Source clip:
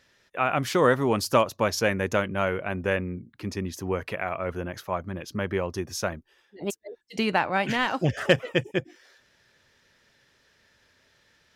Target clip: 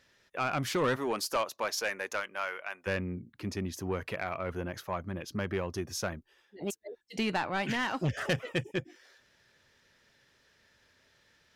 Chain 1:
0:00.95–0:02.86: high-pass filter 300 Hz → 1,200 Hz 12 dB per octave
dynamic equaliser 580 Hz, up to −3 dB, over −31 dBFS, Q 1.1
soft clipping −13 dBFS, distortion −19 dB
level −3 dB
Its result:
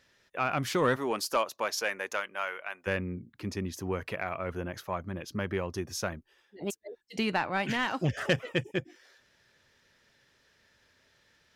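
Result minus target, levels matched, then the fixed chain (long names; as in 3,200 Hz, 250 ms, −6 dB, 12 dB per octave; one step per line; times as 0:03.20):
soft clipping: distortion −8 dB
0:00.95–0:02.86: high-pass filter 300 Hz → 1,200 Hz 12 dB per octave
dynamic equaliser 580 Hz, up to −3 dB, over −31 dBFS, Q 1.1
soft clipping −19.5 dBFS, distortion −12 dB
level −3 dB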